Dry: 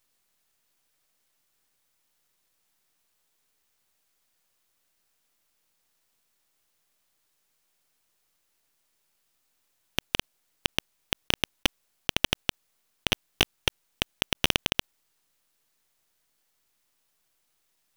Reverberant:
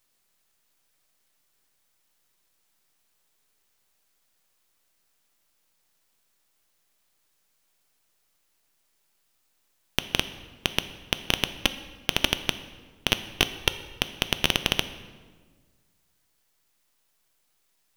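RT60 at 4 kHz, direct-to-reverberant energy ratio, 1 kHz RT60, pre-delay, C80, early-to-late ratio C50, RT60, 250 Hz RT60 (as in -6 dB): 1.1 s, 10.5 dB, 1.4 s, 3 ms, 14.0 dB, 13.0 dB, 1.5 s, 1.9 s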